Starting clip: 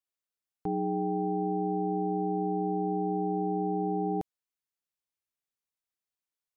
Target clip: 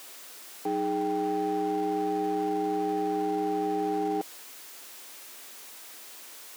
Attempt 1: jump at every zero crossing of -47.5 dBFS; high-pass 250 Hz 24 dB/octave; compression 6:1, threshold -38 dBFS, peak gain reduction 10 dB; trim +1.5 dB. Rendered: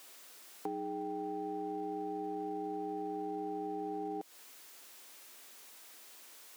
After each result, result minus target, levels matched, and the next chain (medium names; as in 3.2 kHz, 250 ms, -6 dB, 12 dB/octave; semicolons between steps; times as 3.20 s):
compression: peak gain reduction +10 dB; jump at every zero crossing: distortion -8 dB
jump at every zero crossing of -47.5 dBFS; high-pass 250 Hz 24 dB/octave; trim +1.5 dB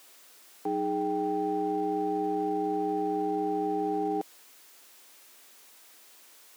jump at every zero crossing: distortion -8 dB
jump at every zero crossing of -38.5 dBFS; high-pass 250 Hz 24 dB/octave; trim +1.5 dB